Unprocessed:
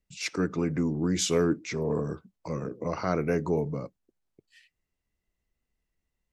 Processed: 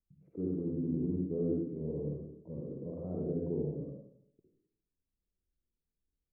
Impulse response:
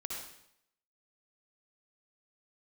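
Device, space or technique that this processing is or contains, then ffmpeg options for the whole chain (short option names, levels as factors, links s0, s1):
next room: -filter_complex "[0:a]lowpass=f=490:w=0.5412,lowpass=f=490:w=1.3066[s0];[1:a]atrim=start_sample=2205[s1];[s0][s1]afir=irnorm=-1:irlink=0,volume=0.501"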